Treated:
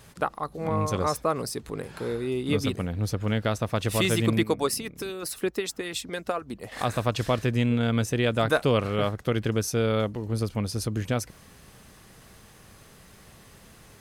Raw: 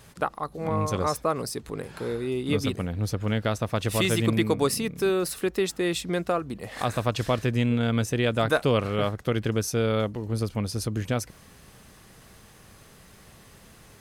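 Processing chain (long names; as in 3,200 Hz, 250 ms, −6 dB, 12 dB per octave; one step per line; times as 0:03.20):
0:04.43–0:06.72: harmonic and percussive parts rebalanced harmonic −12 dB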